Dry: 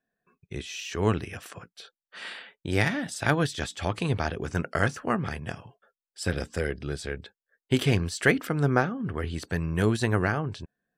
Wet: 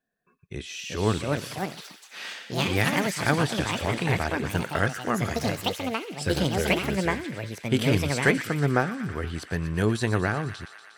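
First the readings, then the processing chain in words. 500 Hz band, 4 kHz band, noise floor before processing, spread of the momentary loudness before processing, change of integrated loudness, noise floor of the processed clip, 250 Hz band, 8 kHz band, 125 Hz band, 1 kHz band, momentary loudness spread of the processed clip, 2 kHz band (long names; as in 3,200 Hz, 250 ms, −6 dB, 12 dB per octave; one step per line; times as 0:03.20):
+2.0 dB, +5.0 dB, below −85 dBFS, 15 LU, +1.5 dB, −54 dBFS, +2.0 dB, +3.5 dB, +1.0 dB, +3.0 dB, 11 LU, +2.0 dB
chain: delay with a high-pass on its return 119 ms, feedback 76%, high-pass 1,600 Hz, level −10 dB
delay with pitch and tempo change per echo 513 ms, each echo +5 semitones, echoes 2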